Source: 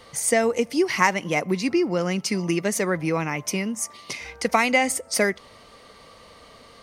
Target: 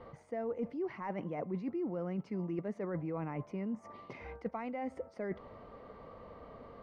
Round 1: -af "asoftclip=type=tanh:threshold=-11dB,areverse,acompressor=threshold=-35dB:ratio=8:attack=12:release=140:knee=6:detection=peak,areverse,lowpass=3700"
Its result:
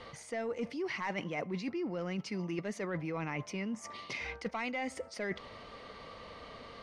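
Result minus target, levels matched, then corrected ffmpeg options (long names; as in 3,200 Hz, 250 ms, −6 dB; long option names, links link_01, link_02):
4,000 Hz band +17.5 dB; soft clipping: distortion +10 dB
-af "asoftclip=type=tanh:threshold=-4dB,areverse,acompressor=threshold=-35dB:ratio=8:attack=12:release=140:knee=6:detection=peak,areverse,lowpass=1000"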